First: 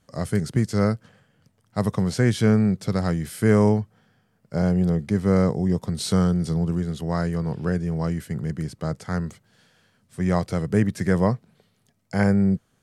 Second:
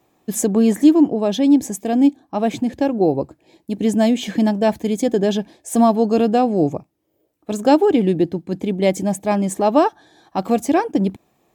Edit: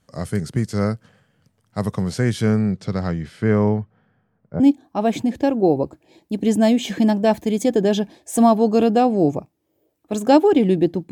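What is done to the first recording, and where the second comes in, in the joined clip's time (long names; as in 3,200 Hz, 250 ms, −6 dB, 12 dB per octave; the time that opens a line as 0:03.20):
first
0:02.61–0:04.60: low-pass filter 7,400 Hz → 1,200 Hz
0:04.60: continue with second from 0:01.98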